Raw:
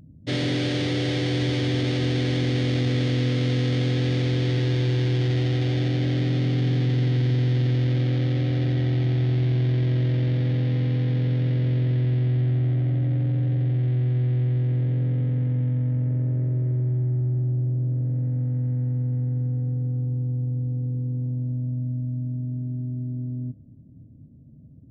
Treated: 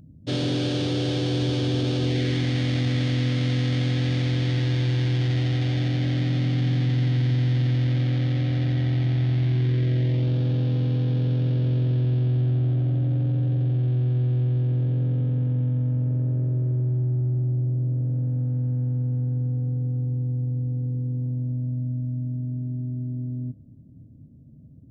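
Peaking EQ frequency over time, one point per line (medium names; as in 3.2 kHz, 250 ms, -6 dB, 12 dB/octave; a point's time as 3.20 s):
peaking EQ -13.5 dB 0.32 oct
2.04 s 2 kHz
2.44 s 420 Hz
9.45 s 420 Hz
10.29 s 2 kHz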